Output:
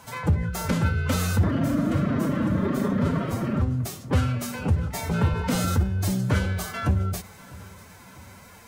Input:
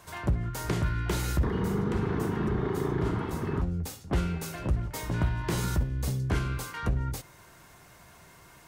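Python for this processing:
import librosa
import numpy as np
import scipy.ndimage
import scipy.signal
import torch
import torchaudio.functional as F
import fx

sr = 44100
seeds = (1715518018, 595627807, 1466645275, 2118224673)

y = fx.pitch_keep_formants(x, sr, semitones=6.5)
y = fx.echo_feedback(y, sr, ms=648, feedback_pct=54, wet_db=-21.5)
y = y * librosa.db_to_amplitude(5.5)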